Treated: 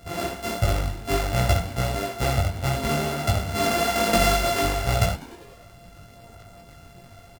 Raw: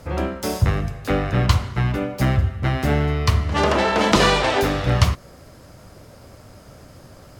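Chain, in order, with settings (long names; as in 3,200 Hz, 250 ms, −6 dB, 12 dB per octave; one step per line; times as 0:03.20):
samples sorted by size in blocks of 64 samples
echo with shifted repeats 99 ms, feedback 64%, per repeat +83 Hz, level −20 dB
multi-voice chorus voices 6, 1.3 Hz, delay 20 ms, depth 3 ms
level −1 dB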